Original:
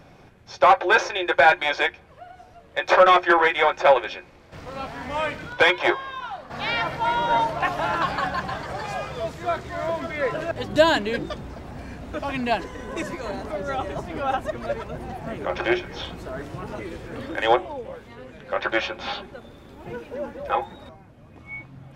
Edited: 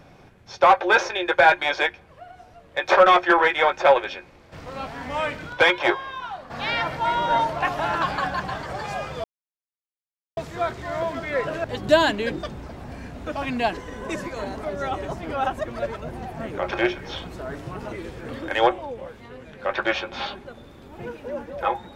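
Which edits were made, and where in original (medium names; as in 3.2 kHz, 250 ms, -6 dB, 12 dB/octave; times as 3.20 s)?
9.24 s: insert silence 1.13 s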